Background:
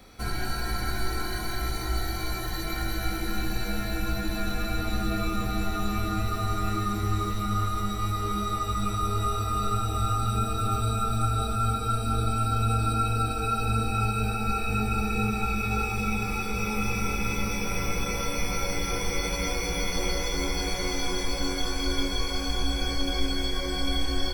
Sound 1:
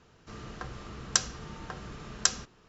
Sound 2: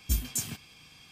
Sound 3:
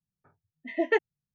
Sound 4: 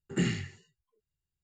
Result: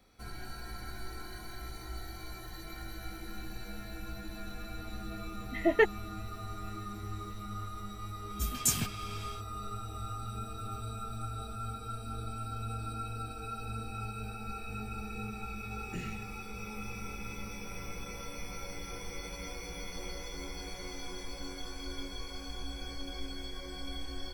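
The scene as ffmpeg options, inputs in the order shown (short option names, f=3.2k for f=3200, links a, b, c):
-filter_complex "[0:a]volume=-13.5dB[a];[2:a]dynaudnorm=f=100:g=5:m=16dB[b];[3:a]atrim=end=1.34,asetpts=PTS-STARTPTS,afade=t=in:d=0.004:c=hsin,afade=t=out:st=1.336:d=0.004:c=hsin,adelay=4870[c];[b]atrim=end=1.11,asetpts=PTS-STARTPTS,volume=-9dB,afade=t=in:d=0.004:c=hsin,afade=t=out:st=1.106:d=0.004:c=hsin,adelay=8300[d];[4:a]atrim=end=1.43,asetpts=PTS-STARTPTS,volume=-13.5dB,afade=t=in:d=0.004:c=hsin,afade=t=out:st=1.426:d=0.004:c=hsin,adelay=15760[e];[a][c][d][e]amix=inputs=4:normalize=0"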